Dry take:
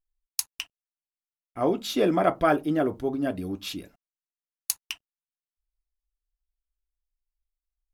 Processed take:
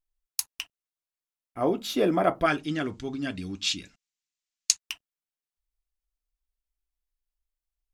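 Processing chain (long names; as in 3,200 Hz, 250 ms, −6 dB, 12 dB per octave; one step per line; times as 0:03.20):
0:02.46–0:04.79: drawn EQ curve 210 Hz 0 dB, 590 Hz −11 dB, 2,300 Hz +8 dB, 7,300 Hz +12 dB, 14,000 Hz −21 dB
level −1 dB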